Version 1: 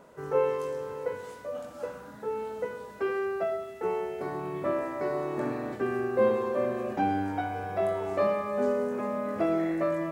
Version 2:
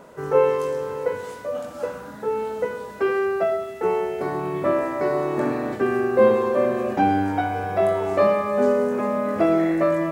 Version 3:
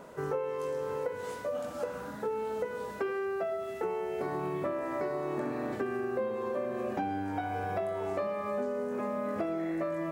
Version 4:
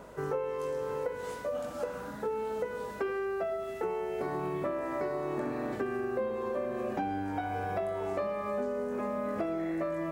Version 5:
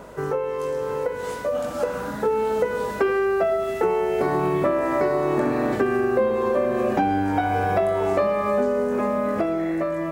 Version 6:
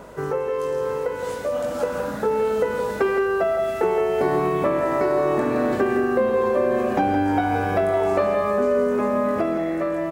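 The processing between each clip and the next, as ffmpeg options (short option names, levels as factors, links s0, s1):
-af "bandreject=f=60:t=h:w=6,bandreject=f=120:t=h:w=6,volume=2.51"
-af "acompressor=threshold=0.0447:ratio=10,volume=0.708"
-af "aeval=exprs='val(0)+0.001*(sin(2*PI*50*n/s)+sin(2*PI*2*50*n/s)/2+sin(2*PI*3*50*n/s)/3+sin(2*PI*4*50*n/s)/4+sin(2*PI*5*50*n/s)/5)':c=same"
-af "dynaudnorm=f=480:g=7:m=1.68,volume=2.37"
-af "aecho=1:1:167|540:0.398|0.141"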